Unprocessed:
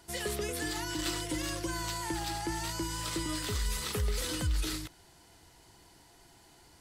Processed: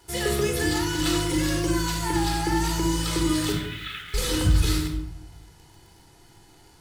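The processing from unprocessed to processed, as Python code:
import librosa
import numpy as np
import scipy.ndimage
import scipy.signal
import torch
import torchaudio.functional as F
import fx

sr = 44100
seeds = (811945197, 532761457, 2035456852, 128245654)

p1 = fx.ellip_bandpass(x, sr, low_hz=1400.0, high_hz=3500.0, order=3, stop_db=40, at=(3.52, 4.14))
p2 = fx.quant_dither(p1, sr, seeds[0], bits=8, dither='none')
p3 = p1 + (p2 * librosa.db_to_amplitude(-3.5))
y = fx.room_shoebox(p3, sr, seeds[1], volume_m3=2200.0, walls='furnished', distance_m=4.1)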